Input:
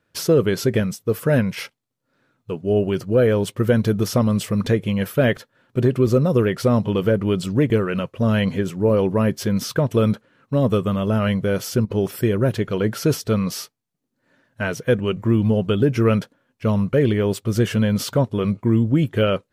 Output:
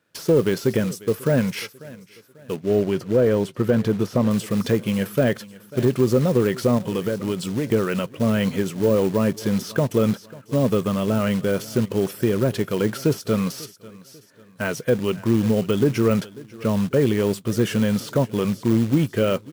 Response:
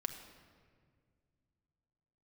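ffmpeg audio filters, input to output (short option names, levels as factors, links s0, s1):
-filter_complex "[0:a]asplit=3[s0][s1][s2];[s0]afade=t=out:st=6.77:d=0.02[s3];[s1]acompressor=threshold=0.112:ratio=20,afade=t=in:st=6.77:d=0.02,afade=t=out:st=7.66:d=0.02[s4];[s2]afade=t=in:st=7.66:d=0.02[s5];[s3][s4][s5]amix=inputs=3:normalize=0,highpass=130,equalizer=f=11000:t=o:w=2.5:g=4.5,aecho=1:1:543|1086|1629:0.0841|0.0328|0.0128,acrusher=bits=4:mode=log:mix=0:aa=0.000001,deesser=0.55,asettb=1/sr,asplit=3[s6][s7][s8];[s6]atrim=end=2.564[s9];[s7]atrim=start=2.56:end=4.31,asetpts=PTS-STARTPTS,afade=t=in:d=0.004:c=qsin,afade=t=out:st=1.746:d=0.004:c=qsin,highshelf=f=4700:g=-9[s10];[s8]atrim=start=4.306[s11];[s9][s10]acrossfade=d=0.004:c1=hsin:c2=qsin[s12];[s12][s11]acrossfade=d=0.004:c1=qsin:c2=hsin"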